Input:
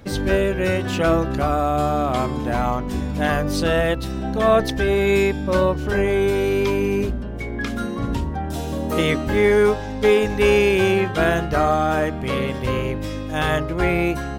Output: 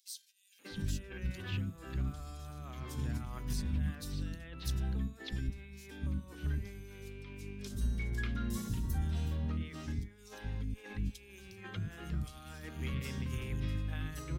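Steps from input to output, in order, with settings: compressor with a negative ratio -24 dBFS, ratio -0.5; amplifier tone stack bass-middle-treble 6-0-2; three bands offset in time highs, mids, lows 590/710 ms, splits 320/3900 Hz; trim +3.5 dB

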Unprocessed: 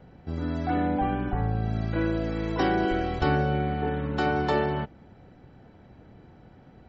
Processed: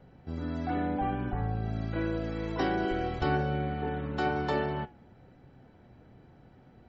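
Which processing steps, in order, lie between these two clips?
flange 1.1 Hz, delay 7.2 ms, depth 1.3 ms, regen +82%

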